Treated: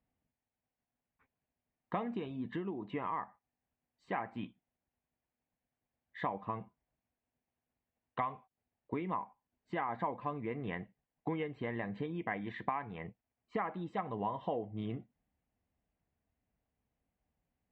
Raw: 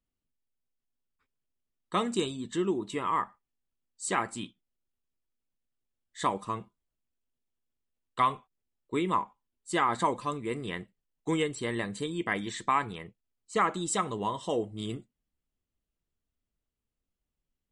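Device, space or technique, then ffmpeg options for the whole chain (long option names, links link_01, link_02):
bass amplifier: -af "acompressor=threshold=-42dB:ratio=4,highpass=60,equalizer=frequency=370:width_type=q:width=4:gain=-6,equalizer=frequency=740:width_type=q:width=4:gain=7,equalizer=frequency=1300:width_type=q:width=4:gain=-7,lowpass=frequency=2300:width=0.5412,lowpass=frequency=2300:width=1.3066,volume=6.5dB"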